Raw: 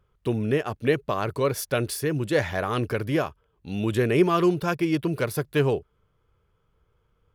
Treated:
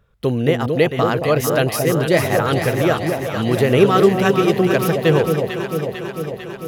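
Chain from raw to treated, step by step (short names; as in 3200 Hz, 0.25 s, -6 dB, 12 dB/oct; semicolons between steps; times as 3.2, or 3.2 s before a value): varispeed +10%; echo with dull and thin repeats by turns 0.224 s, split 810 Hz, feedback 82%, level -4.5 dB; gain +6.5 dB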